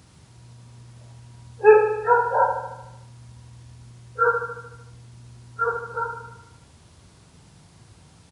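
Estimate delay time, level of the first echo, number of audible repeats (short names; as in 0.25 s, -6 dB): 75 ms, -7.5 dB, 7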